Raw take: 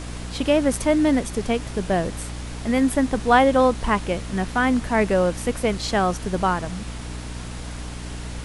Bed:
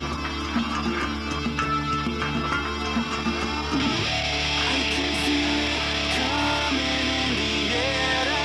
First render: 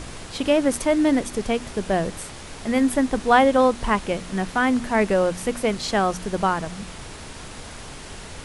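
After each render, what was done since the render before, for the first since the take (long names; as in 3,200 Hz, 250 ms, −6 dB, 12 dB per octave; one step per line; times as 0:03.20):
hum removal 60 Hz, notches 5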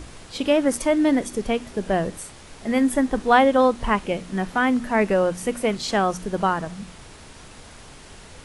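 noise reduction from a noise print 6 dB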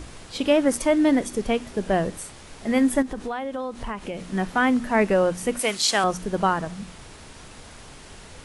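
0:03.02–0:04.24: downward compressor, threshold −27 dBFS
0:05.59–0:06.04: spectral tilt +3.5 dB per octave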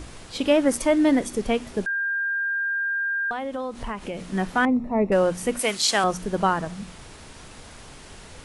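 0:01.86–0:03.31: beep over 1,600 Hz −22.5 dBFS
0:04.65–0:05.12: moving average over 28 samples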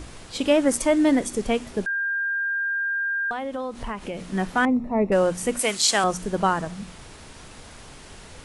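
dynamic equaliser 7,700 Hz, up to +5 dB, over −48 dBFS, Q 1.8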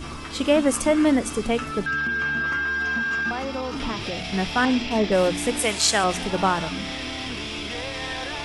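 mix in bed −7.5 dB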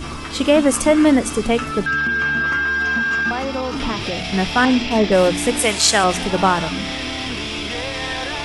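level +5.5 dB
brickwall limiter −3 dBFS, peak gain reduction 2 dB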